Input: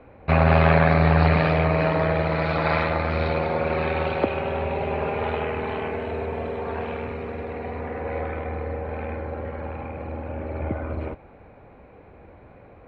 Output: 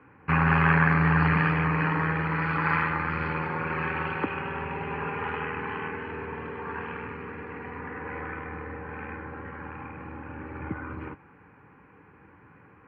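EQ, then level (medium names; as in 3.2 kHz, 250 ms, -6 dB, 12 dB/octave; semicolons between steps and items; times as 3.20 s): cabinet simulation 200–4000 Hz, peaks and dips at 230 Hz -10 dB, 370 Hz -8 dB, 530 Hz -9 dB, 1.3 kHz -4 dB, 2.2 kHz -8 dB; static phaser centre 1.6 kHz, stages 4; +5.5 dB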